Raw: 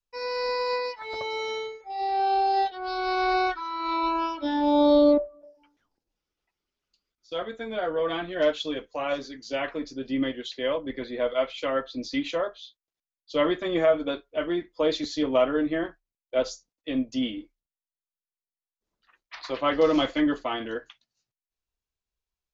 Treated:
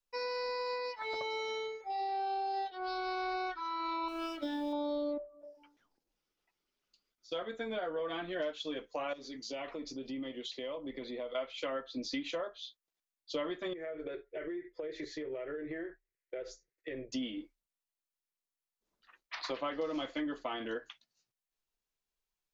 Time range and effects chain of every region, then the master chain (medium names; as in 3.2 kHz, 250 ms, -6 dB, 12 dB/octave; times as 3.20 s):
4.08–4.73 s: companding laws mixed up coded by A + peaking EQ 990 Hz -15 dB 0.29 oct
9.13–11.35 s: peaking EQ 1.6 kHz -12.5 dB 0.28 oct + compression 3:1, threshold -39 dBFS
13.73–17.12 s: FFT filter 140 Hz 0 dB, 250 Hz -19 dB, 370 Hz +8 dB, 760 Hz -10 dB, 1.1 kHz -14 dB, 1.9 kHz +5 dB, 3.1 kHz -13 dB + compression 12:1, threshold -35 dBFS + tape noise reduction on one side only encoder only
whole clip: peaking EQ 65 Hz -14.5 dB 1.2 oct; compression 5:1, threshold -35 dBFS